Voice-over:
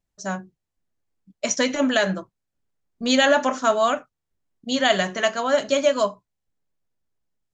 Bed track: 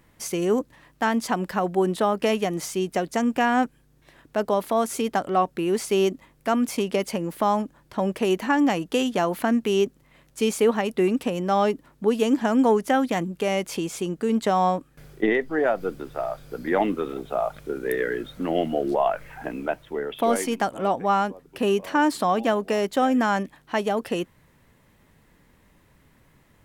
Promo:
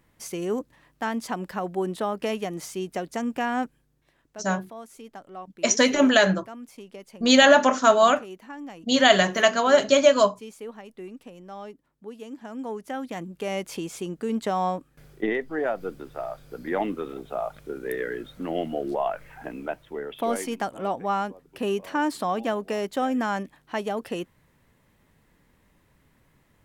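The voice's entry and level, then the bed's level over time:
4.20 s, +2.5 dB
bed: 3.70 s -5.5 dB
4.48 s -18.5 dB
12.32 s -18.5 dB
13.57 s -4.5 dB

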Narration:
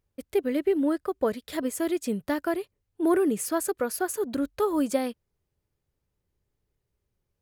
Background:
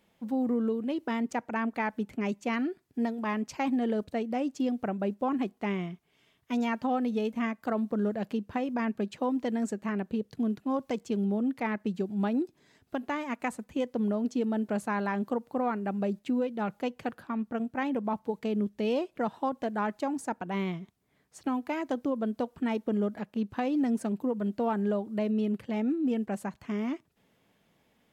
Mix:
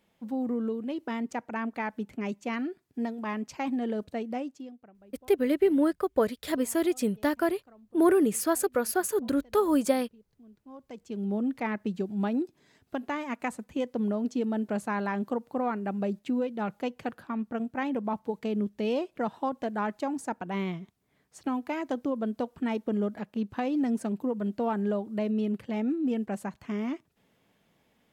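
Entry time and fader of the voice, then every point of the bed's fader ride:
4.95 s, +1.0 dB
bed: 4.37 s -2 dB
4.94 s -26 dB
10.43 s -26 dB
11.35 s 0 dB

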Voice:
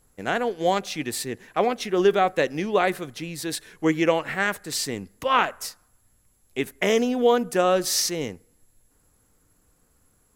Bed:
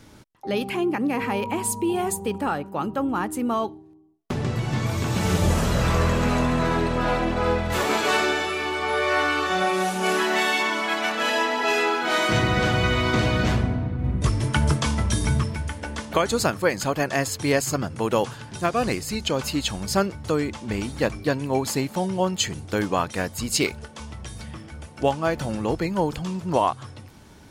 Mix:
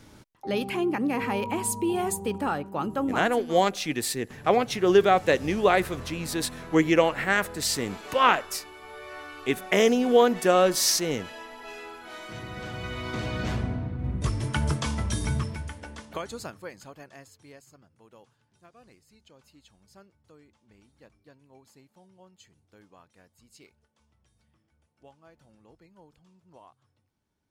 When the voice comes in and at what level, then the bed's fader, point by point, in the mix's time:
2.90 s, +0.5 dB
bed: 3.09 s -2.5 dB
3.58 s -19.5 dB
12.25 s -19.5 dB
13.72 s -5.5 dB
15.54 s -5.5 dB
17.82 s -32 dB

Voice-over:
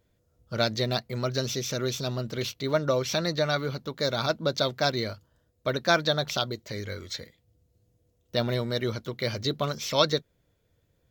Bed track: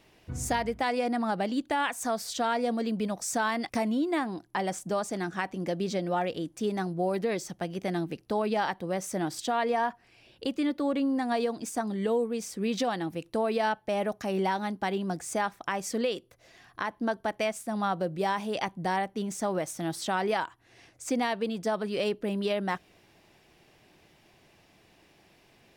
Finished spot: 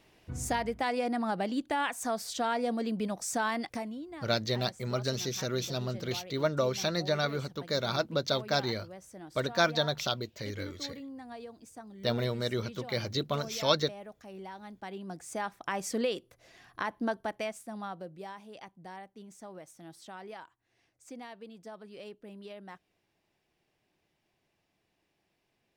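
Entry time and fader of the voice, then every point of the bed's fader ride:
3.70 s, -3.5 dB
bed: 3.60 s -2.5 dB
4.09 s -16.5 dB
14.48 s -16.5 dB
15.81 s -1.5 dB
17.01 s -1.5 dB
18.44 s -17 dB

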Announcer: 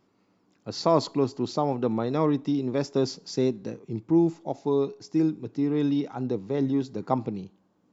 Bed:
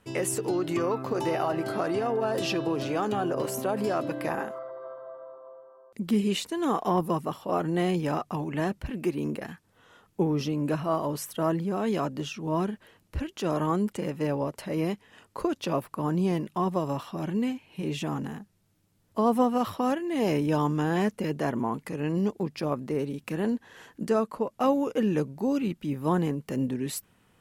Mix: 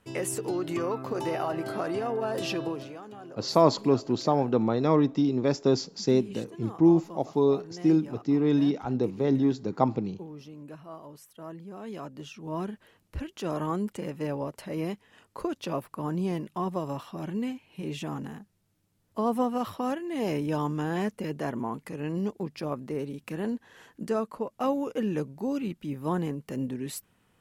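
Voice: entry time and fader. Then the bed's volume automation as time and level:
2.70 s, +1.5 dB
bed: 2.66 s -2.5 dB
3.01 s -16.5 dB
11.36 s -16.5 dB
12.80 s -3.5 dB

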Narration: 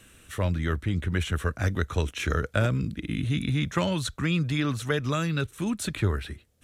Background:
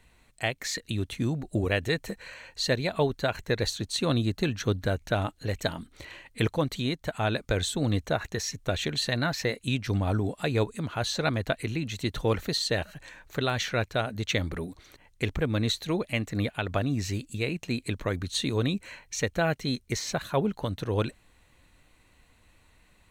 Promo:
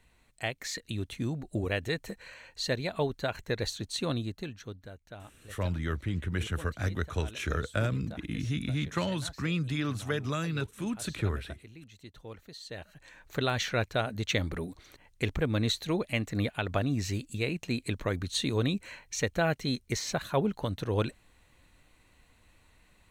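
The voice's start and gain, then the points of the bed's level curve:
5.20 s, -5.0 dB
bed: 4.04 s -4.5 dB
4.91 s -19.5 dB
12.51 s -19.5 dB
13.33 s -1.5 dB

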